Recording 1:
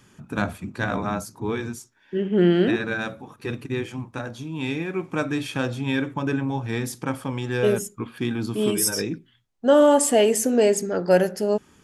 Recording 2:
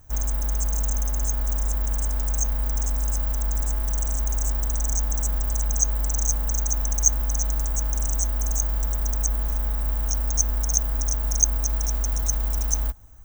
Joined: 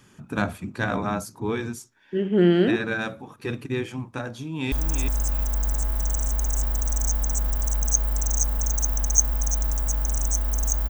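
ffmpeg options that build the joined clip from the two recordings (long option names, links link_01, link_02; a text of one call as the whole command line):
ffmpeg -i cue0.wav -i cue1.wav -filter_complex "[0:a]apad=whole_dur=10.89,atrim=end=10.89,atrim=end=4.722[link_01];[1:a]atrim=start=2.598:end=8.77[link_02];[link_01][link_02]acrossfade=duration=0.004:curve1=hsin:curve2=hsin,asplit=2[link_03][link_04];[link_04]afade=type=in:start_time=4.3:duration=0.01,afade=type=out:start_time=4.72:duration=0.01,aecho=0:1:360|720|1080:0.473151|0.0709727|0.0106459[link_05];[link_03][link_05]amix=inputs=2:normalize=0" out.wav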